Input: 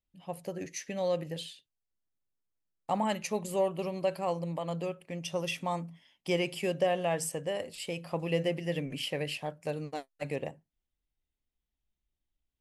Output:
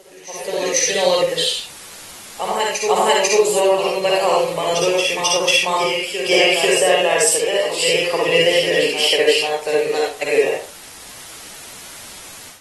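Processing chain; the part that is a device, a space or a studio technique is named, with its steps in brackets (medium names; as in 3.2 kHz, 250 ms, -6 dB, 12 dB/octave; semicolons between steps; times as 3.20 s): tilt EQ +4 dB/octave; reverse echo 493 ms -7.5 dB; filmed off a television (band-pass 280–7700 Hz; peaking EQ 430 Hz +12 dB 0.37 oct; reverberation RT60 0.35 s, pre-delay 49 ms, DRR -3 dB; white noise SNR 20 dB; level rider gain up to 15.5 dB; trim -1.5 dB; AAC 32 kbps 48 kHz)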